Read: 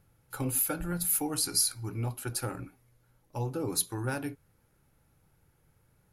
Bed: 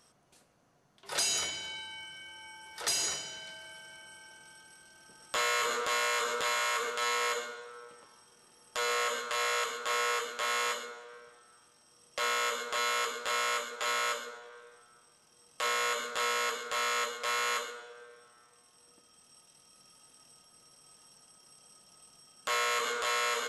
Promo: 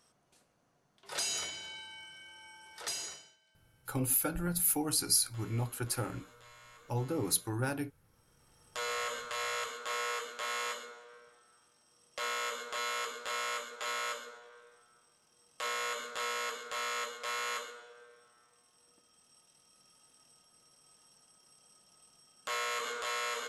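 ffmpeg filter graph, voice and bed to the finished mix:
-filter_complex "[0:a]adelay=3550,volume=0.891[s0];[1:a]volume=6.68,afade=t=out:st=2.74:d=0.63:silence=0.0841395,afade=t=in:st=8.04:d=0.61:silence=0.0891251[s1];[s0][s1]amix=inputs=2:normalize=0"

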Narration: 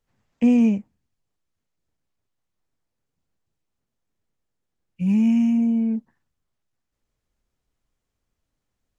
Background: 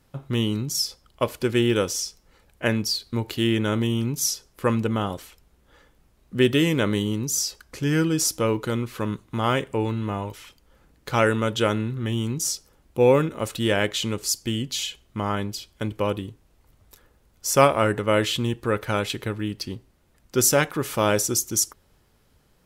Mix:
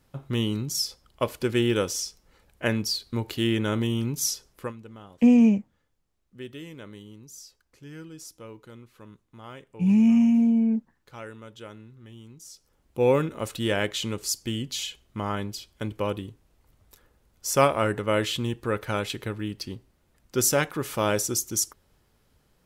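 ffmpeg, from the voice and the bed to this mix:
-filter_complex "[0:a]adelay=4800,volume=1[s0];[1:a]volume=5.31,afade=t=out:st=4.51:d=0.22:silence=0.125893,afade=t=in:st=12.49:d=0.61:silence=0.141254[s1];[s0][s1]amix=inputs=2:normalize=0"

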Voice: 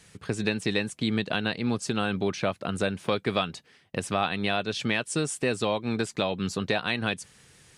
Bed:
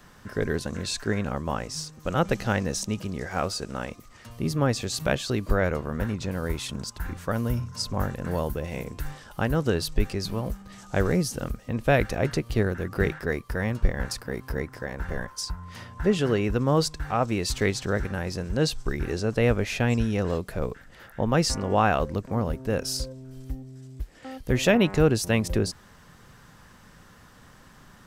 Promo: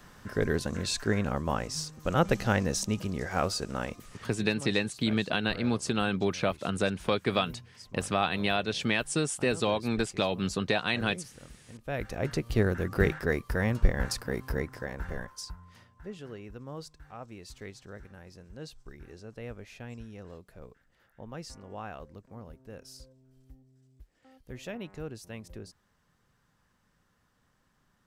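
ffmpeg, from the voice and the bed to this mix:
-filter_complex "[0:a]adelay=4000,volume=0.891[s0];[1:a]volume=7.94,afade=t=out:st=4.23:d=0.22:silence=0.11885,afade=t=in:st=11.82:d=0.89:silence=0.112202,afade=t=out:st=14.36:d=1.57:silence=0.112202[s1];[s0][s1]amix=inputs=2:normalize=0"

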